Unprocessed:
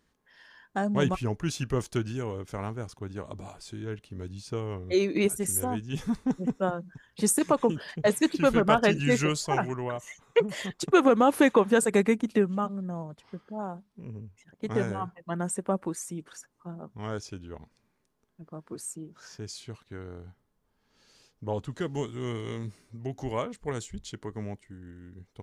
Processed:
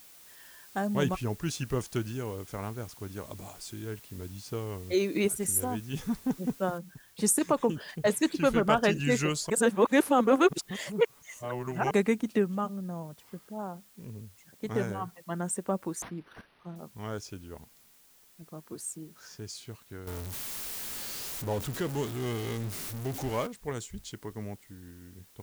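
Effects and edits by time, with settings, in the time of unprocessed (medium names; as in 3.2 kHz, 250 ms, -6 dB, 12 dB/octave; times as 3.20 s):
3.07–3.86 s: treble shelf 4.9 kHz +6.5 dB
6.78 s: noise floor step -54 dB -61 dB
9.50–11.91 s: reverse
16.02–16.76 s: decimation joined by straight lines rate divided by 6×
20.07–23.47 s: jump at every zero crossing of -33 dBFS
whole clip: treble shelf 7.1 kHz +4.5 dB; trim -2.5 dB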